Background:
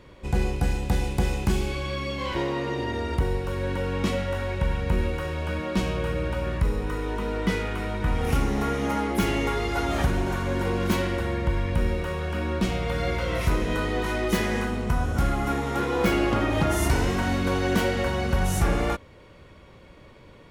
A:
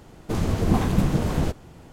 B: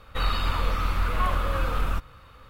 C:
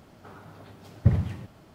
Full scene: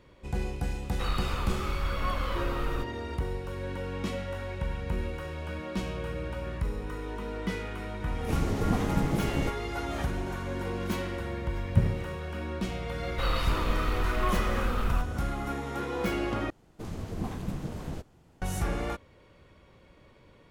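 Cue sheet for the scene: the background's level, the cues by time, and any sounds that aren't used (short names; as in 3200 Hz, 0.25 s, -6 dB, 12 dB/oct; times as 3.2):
background -7.5 dB
0.84 add B -6.5 dB
7.99 add A -7 dB
10.71 add C -4 dB
13.03 add B -4.5 dB + G.711 law mismatch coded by mu
16.5 replace with A -13.5 dB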